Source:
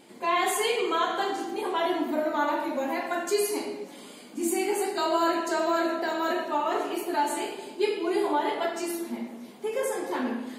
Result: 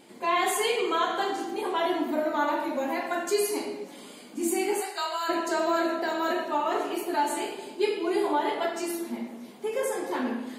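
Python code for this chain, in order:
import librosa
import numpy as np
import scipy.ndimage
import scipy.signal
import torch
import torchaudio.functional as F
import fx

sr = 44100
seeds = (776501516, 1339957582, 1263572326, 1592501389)

y = fx.highpass(x, sr, hz=fx.line((4.8, 630.0), (5.28, 1400.0)), slope=12, at=(4.8, 5.28), fade=0.02)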